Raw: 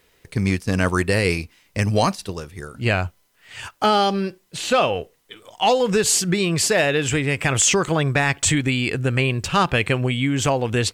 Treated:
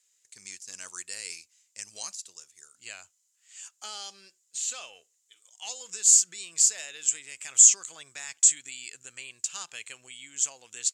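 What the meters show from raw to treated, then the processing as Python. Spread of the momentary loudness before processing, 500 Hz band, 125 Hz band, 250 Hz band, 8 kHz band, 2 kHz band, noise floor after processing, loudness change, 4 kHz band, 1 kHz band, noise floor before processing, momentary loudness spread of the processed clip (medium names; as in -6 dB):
12 LU, under -30 dB, under -40 dB, under -35 dB, +3.0 dB, -20.5 dB, -72 dBFS, -2.0 dB, -12.5 dB, -28.0 dB, -61 dBFS, 23 LU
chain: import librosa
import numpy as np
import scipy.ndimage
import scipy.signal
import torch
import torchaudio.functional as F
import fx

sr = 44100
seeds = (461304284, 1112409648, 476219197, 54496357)

y = fx.bandpass_q(x, sr, hz=7100.0, q=6.6)
y = F.gain(torch.from_numpy(y), 6.5).numpy()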